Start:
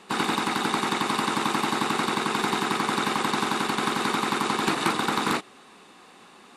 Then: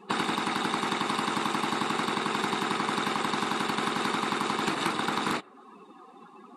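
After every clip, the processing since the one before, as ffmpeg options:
ffmpeg -i in.wav -af "afftdn=noise_reduction=22:noise_floor=-45,acompressor=threshold=-36dB:ratio=3,volume=7dB" out.wav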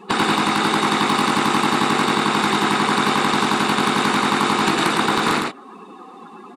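ffmpeg -i in.wav -af "aeval=exprs='0.133*(abs(mod(val(0)/0.133+3,4)-2)-1)':channel_layout=same,aecho=1:1:109:0.668,volume=9dB" out.wav

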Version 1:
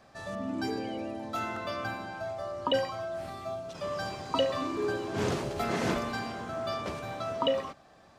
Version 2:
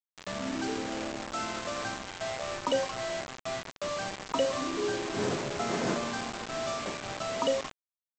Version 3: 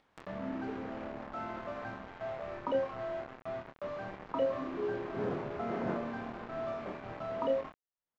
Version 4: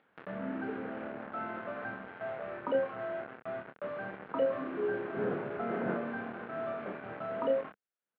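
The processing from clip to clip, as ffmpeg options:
ffmpeg -i in.wav -af "highpass=140,aemphasis=mode=reproduction:type=75kf,aresample=16000,acrusher=bits=5:mix=0:aa=0.000001,aresample=44100" out.wav
ffmpeg -i in.wav -filter_complex "[0:a]lowpass=1500,acompressor=mode=upward:threshold=-38dB:ratio=2.5,asplit=2[link_01][link_02];[link_02]adelay=26,volume=-6dB[link_03];[link_01][link_03]amix=inputs=2:normalize=0,volume=-5dB" out.wav
ffmpeg -i in.wav -af "highpass=130,equalizer=frequency=200:width_type=q:width=4:gain=3,equalizer=frequency=460:width_type=q:width=4:gain=4,equalizer=frequency=1000:width_type=q:width=4:gain=-3,equalizer=frequency=1500:width_type=q:width=4:gain=7,lowpass=frequency=3200:width=0.5412,lowpass=frequency=3200:width=1.3066" out.wav

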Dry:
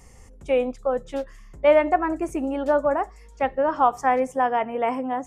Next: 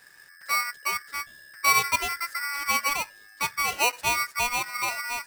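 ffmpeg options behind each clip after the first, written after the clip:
ffmpeg -i in.wav -af "aeval=exprs='val(0)*sgn(sin(2*PI*1700*n/s))':channel_layout=same,volume=-5dB" out.wav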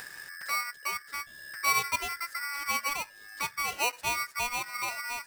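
ffmpeg -i in.wav -af "acompressor=mode=upward:threshold=-26dB:ratio=2.5,volume=-5.5dB" out.wav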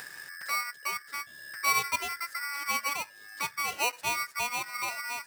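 ffmpeg -i in.wav -af "highpass=92" out.wav

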